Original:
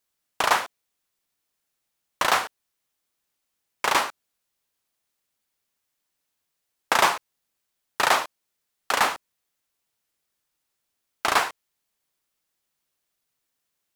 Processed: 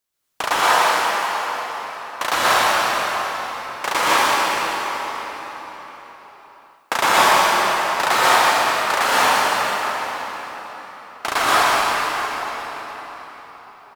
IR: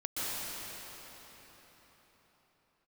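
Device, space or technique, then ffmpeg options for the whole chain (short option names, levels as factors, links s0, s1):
cave: -filter_complex "[0:a]aecho=1:1:188:0.376[s0];[1:a]atrim=start_sample=2205[s1];[s0][s1]afir=irnorm=-1:irlink=0,asettb=1/sr,asplit=3[s2][s3][s4];[s2]atrim=end=0.614[s5];[s3]atrim=start=0.61:end=2.33,asetpts=PTS-STARTPTS,afade=t=in:d=0.004:c=qsin,afade=t=out:st=1.716:d=0.004:c=qsin,highpass=f=170:p=1[s6];[s4]atrim=start=2.326[s7];[s5][s6]acrossfade=d=0.004:c1=hsin:c2=qsin[s8];[s8][s7]acrossfade=d=0.004:c1=qsin:c2=hsin,volume=1.33"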